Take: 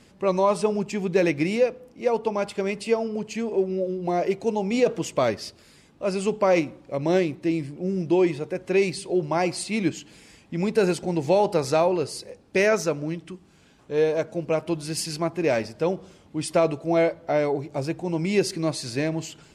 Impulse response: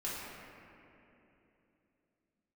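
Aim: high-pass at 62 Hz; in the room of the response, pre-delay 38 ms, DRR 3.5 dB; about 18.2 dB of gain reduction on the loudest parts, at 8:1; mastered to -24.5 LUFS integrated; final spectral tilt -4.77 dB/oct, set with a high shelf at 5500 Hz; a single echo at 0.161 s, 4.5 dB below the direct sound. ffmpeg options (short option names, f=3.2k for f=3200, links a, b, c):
-filter_complex "[0:a]highpass=62,highshelf=f=5.5k:g=5.5,acompressor=threshold=-35dB:ratio=8,aecho=1:1:161:0.596,asplit=2[a][b];[1:a]atrim=start_sample=2205,adelay=38[c];[b][c]afir=irnorm=-1:irlink=0,volume=-7dB[d];[a][d]amix=inputs=2:normalize=0,volume=12dB"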